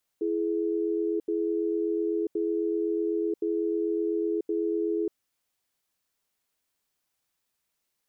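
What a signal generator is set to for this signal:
tone pair in a cadence 333 Hz, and 421 Hz, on 0.99 s, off 0.08 s, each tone −27.5 dBFS 4.87 s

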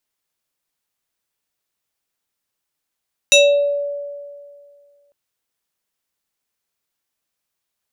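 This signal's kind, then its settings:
two-operator FM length 1.80 s, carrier 573 Hz, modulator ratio 5.64, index 2.2, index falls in 0.54 s exponential, decay 2.13 s, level −6 dB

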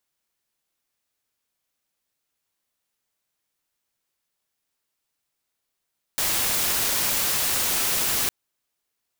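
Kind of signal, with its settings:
noise white, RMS −23.5 dBFS 2.11 s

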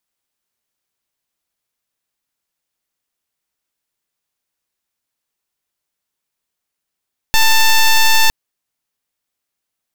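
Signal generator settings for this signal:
pulse wave 889 Hz, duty 9% −9.5 dBFS 0.96 s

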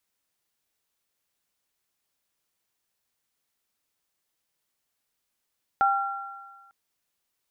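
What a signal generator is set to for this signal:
inharmonic partials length 0.90 s, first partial 792 Hz, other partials 1,370 Hz, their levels −1 dB, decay 1.28 s, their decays 1.57 s, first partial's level −19 dB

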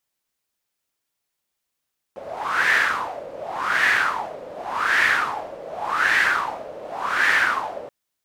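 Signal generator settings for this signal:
wind from filtered noise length 5.73 s, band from 540 Hz, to 1,800 Hz, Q 5.9, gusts 5, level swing 18 dB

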